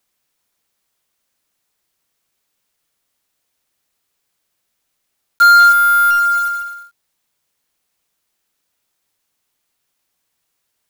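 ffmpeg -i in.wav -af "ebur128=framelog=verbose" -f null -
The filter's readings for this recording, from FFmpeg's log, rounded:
Integrated loudness:
  I:         -10.2 LUFS
  Threshold: -28.7 LUFS
Loudness range:
  LRA:        10.1 LU
  Threshold: -37.4 LUFS
  LRA low:   -23.4 LUFS
  LRA high:  -13.2 LUFS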